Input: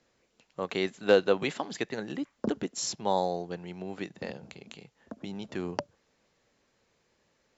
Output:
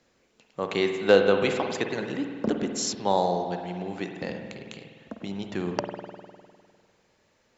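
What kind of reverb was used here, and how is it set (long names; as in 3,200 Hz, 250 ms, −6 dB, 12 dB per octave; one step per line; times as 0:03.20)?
spring reverb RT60 1.9 s, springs 50 ms, chirp 50 ms, DRR 4.5 dB
level +3.5 dB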